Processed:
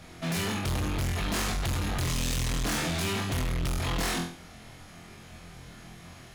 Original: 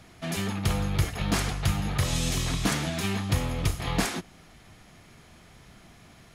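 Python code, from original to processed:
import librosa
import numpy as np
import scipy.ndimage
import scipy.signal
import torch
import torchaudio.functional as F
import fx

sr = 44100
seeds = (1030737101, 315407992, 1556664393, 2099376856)

y = fx.room_flutter(x, sr, wall_m=4.0, rt60_s=0.42)
y = np.clip(10.0 ** (29.0 / 20.0) * y, -1.0, 1.0) / 10.0 ** (29.0 / 20.0)
y = y * 10.0 ** (2.0 / 20.0)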